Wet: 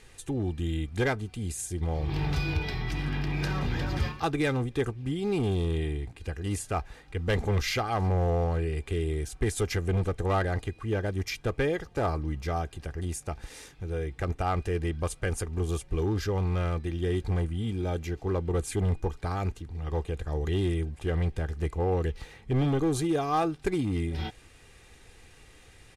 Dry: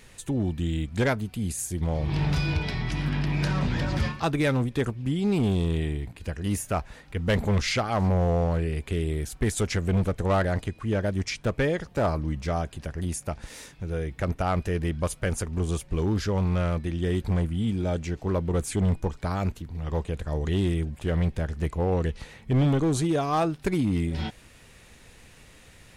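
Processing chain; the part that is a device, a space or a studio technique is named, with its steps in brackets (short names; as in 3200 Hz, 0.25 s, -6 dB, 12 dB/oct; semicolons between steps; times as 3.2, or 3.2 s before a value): crushed at another speed (playback speed 0.8×; sample-and-hold 3×; playback speed 1.25×); LPF 11000 Hz 24 dB/oct; comb 2.5 ms, depth 43%; gain -3 dB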